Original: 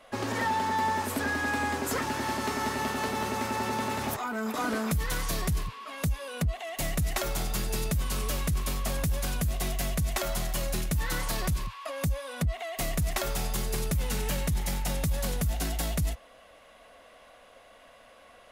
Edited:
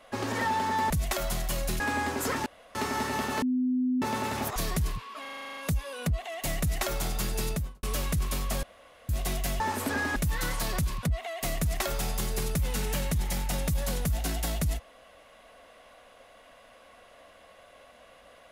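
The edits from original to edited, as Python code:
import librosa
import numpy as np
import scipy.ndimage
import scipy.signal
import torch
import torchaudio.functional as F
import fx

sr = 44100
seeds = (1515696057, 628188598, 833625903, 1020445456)

y = fx.studio_fade_out(x, sr, start_s=7.82, length_s=0.36)
y = fx.edit(y, sr, fx.swap(start_s=0.9, length_s=0.56, other_s=9.95, other_length_s=0.9),
    fx.room_tone_fill(start_s=2.12, length_s=0.29),
    fx.bleep(start_s=3.08, length_s=0.6, hz=253.0, db=-23.5),
    fx.cut(start_s=4.22, length_s=1.05),
    fx.stutter(start_s=5.92, slice_s=0.04, count=10),
    fx.room_tone_fill(start_s=8.98, length_s=0.46),
    fx.cut(start_s=11.72, length_s=0.67), tone=tone)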